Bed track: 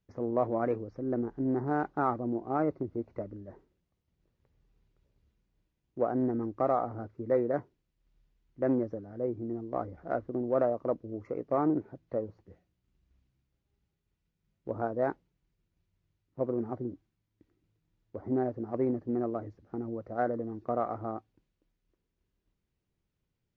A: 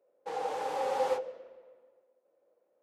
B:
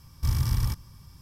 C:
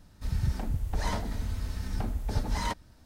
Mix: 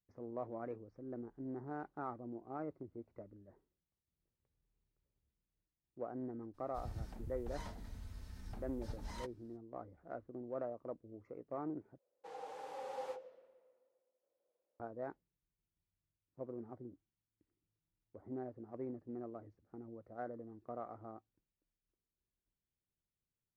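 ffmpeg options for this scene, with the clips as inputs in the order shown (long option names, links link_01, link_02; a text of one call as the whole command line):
ffmpeg -i bed.wav -i cue0.wav -i cue1.wav -i cue2.wav -filter_complex "[0:a]volume=-14.5dB,asplit=2[link_01][link_02];[link_01]atrim=end=11.984[link_03];[1:a]atrim=end=2.82,asetpts=PTS-STARTPTS,volume=-14dB[link_04];[link_02]atrim=start=14.796[link_05];[3:a]atrim=end=3.05,asetpts=PTS-STARTPTS,volume=-16.5dB,afade=type=in:duration=0.02,afade=type=out:start_time=3.03:duration=0.02,adelay=6530[link_06];[link_03][link_04]acrossfade=duration=0.004:curve1=hsin:curve2=hsin[link_07];[link_07][link_05]acrossfade=duration=0.004:curve1=hsin:curve2=hsin[link_08];[link_08][link_06]amix=inputs=2:normalize=0" out.wav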